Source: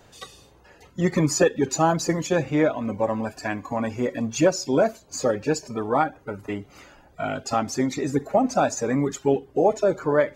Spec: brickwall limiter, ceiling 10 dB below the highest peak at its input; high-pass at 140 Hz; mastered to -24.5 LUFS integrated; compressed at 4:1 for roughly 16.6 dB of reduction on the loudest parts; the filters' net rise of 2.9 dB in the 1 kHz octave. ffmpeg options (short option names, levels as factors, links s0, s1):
-af "highpass=140,equalizer=f=1000:t=o:g=4,acompressor=threshold=0.02:ratio=4,volume=5.96,alimiter=limit=0.211:level=0:latency=1"